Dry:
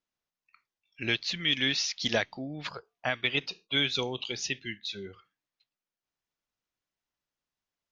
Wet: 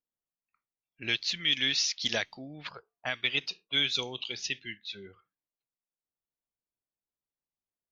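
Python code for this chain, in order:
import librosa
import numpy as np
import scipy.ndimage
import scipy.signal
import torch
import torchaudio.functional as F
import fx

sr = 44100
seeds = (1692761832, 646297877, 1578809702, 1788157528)

y = fx.env_lowpass(x, sr, base_hz=720.0, full_db=-27.0)
y = fx.high_shelf(y, sr, hz=2000.0, db=10.0)
y = y * librosa.db_to_amplitude(-6.5)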